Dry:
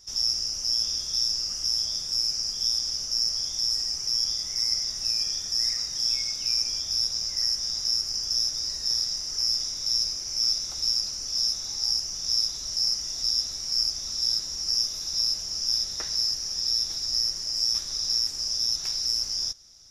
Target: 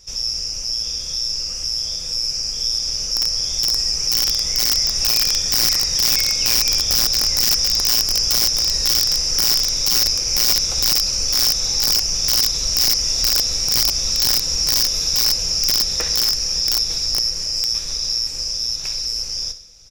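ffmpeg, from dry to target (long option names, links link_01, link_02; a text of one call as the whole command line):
ffmpeg -i in.wav -filter_complex "[0:a]asplit=2[link_01][link_02];[link_02]alimiter=limit=-22.5dB:level=0:latency=1:release=116,volume=0.5dB[link_03];[link_01][link_03]amix=inputs=2:normalize=0,equalizer=frequency=160:width_type=o:width=0.33:gain=4,equalizer=frequency=500:width_type=o:width=0.33:gain=10,equalizer=frequency=2500:width_type=o:width=0.33:gain=9,equalizer=frequency=8000:width_type=o:width=0.33:gain=3,asplit=2[link_04][link_05];[link_05]aecho=0:1:63|126|189|252|315:0.251|0.123|0.0603|0.0296|0.0145[link_06];[link_04][link_06]amix=inputs=2:normalize=0,dynaudnorm=framelen=240:gausssize=31:maxgain=11.5dB,aeval=exprs='(mod(2.24*val(0)+1,2)-1)/2.24':channel_layout=same,lowshelf=frequency=71:gain=11.5,volume=-2dB" out.wav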